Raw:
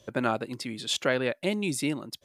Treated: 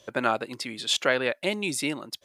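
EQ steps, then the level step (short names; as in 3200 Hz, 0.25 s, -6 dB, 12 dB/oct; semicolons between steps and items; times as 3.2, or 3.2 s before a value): low shelf 330 Hz -12 dB; high shelf 7100 Hz -4 dB; +5.0 dB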